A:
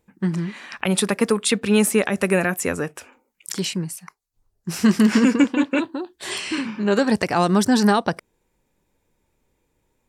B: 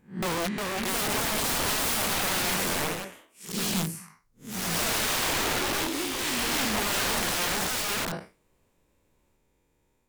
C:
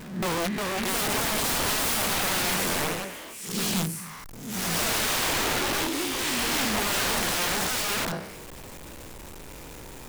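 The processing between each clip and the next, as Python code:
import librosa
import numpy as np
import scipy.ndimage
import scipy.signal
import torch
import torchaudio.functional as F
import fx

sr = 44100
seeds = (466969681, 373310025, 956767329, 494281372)

y1 = fx.spec_blur(x, sr, span_ms=157.0)
y1 = (np.mod(10.0 ** (24.5 / 20.0) * y1 + 1.0, 2.0) - 1.0) / 10.0 ** (24.5 / 20.0)
y1 = fx.echo_pitch(y1, sr, ms=381, semitones=2, count=2, db_per_echo=-3.0)
y2 = y1 + 0.5 * 10.0 ** (-36.0 / 20.0) * np.sign(y1)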